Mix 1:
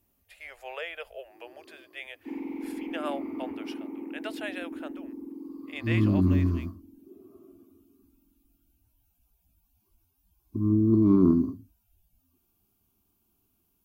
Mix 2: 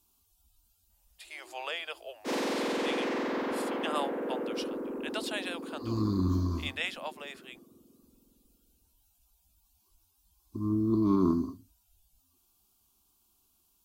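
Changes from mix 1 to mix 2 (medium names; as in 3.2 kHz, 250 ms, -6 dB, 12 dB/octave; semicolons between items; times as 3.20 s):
speech: entry +0.90 s; first sound: remove vowel filter u; master: add graphic EQ 125/250/500/1000/2000/4000/8000 Hz -9/-4/-4/+6/-5/+9/+9 dB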